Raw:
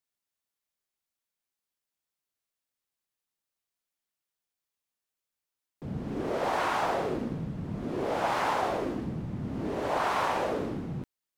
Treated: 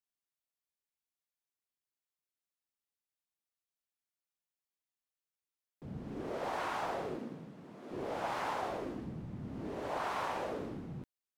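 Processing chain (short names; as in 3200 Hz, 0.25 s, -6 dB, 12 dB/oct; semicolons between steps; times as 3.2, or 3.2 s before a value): 7.15–7.9 HPF 160 Hz -> 420 Hz 12 dB/oct; gain -8.5 dB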